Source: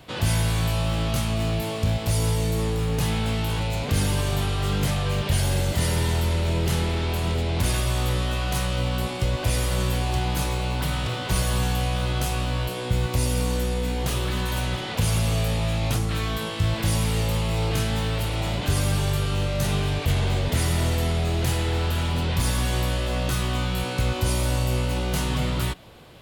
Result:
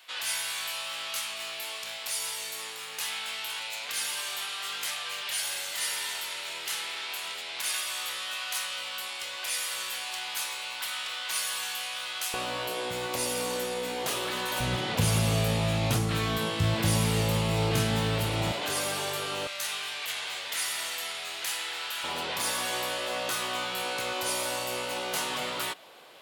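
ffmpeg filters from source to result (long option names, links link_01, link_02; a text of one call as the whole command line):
ffmpeg -i in.wav -af "asetnsamples=nb_out_samples=441:pad=0,asendcmd='12.34 highpass f 410;14.6 highpass f 110;18.52 highpass f 450;19.47 highpass f 1400;22.04 highpass f 540',highpass=1500" out.wav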